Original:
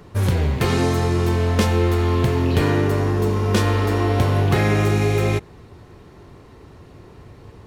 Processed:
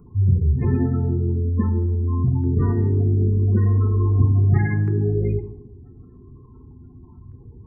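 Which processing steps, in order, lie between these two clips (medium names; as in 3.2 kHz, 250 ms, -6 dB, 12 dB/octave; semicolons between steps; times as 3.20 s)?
spectral gate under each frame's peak -15 dB strong; LFO notch saw down 0.41 Hz 410–1900 Hz; static phaser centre 1.4 kHz, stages 4; on a send: Butterworth band-stop 4 kHz, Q 0.9 + reverberation RT60 0.85 s, pre-delay 4 ms, DRR 5.5 dB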